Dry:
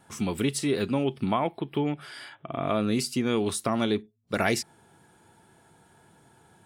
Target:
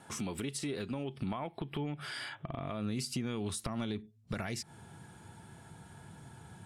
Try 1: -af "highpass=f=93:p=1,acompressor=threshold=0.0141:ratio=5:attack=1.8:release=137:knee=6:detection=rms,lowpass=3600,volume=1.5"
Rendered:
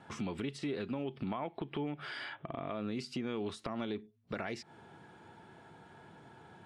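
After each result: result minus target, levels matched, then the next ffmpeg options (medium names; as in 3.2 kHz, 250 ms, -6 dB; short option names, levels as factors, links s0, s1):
8 kHz band -12.5 dB; 125 Hz band -4.0 dB
-af "highpass=f=93:p=1,acompressor=threshold=0.0141:ratio=5:attack=1.8:release=137:knee=6:detection=rms,lowpass=12000,volume=1.5"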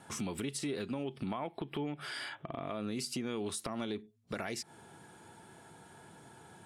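125 Hz band -4.5 dB
-af "highpass=f=93:p=1,acompressor=threshold=0.0141:ratio=5:attack=1.8:release=137:knee=6:detection=rms,asubboost=boost=4.5:cutoff=170,lowpass=12000,volume=1.5"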